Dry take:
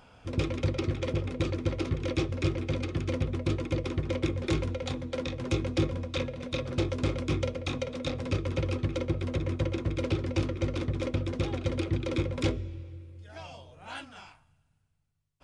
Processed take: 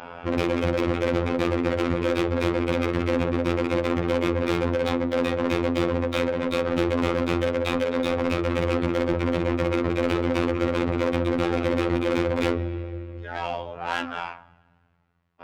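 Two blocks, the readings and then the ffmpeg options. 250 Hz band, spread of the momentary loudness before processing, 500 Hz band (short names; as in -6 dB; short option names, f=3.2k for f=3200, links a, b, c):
+8.5 dB, 12 LU, +10.0 dB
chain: -filter_complex "[0:a]adynamicsmooth=sensitivity=5:basefreq=2.1k,asplit=2[a][b];[b]highpass=f=720:p=1,volume=31dB,asoftclip=type=tanh:threshold=-15.5dB[c];[a][c]amix=inputs=2:normalize=0,lowpass=f=2.6k:p=1,volume=-6dB,afftfilt=real='hypot(re,im)*cos(PI*b)':imag='0':win_size=2048:overlap=0.75,volume=2dB"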